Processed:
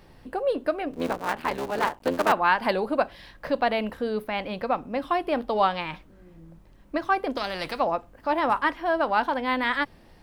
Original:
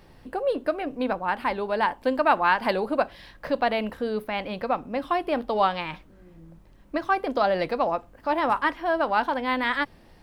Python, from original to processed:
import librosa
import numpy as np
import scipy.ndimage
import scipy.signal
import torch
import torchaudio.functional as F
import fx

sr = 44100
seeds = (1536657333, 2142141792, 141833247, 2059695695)

y = fx.cycle_switch(x, sr, every=3, mode='muted', at=(0.93, 2.32))
y = fx.spectral_comp(y, sr, ratio=2.0, at=(7.36, 7.79), fade=0.02)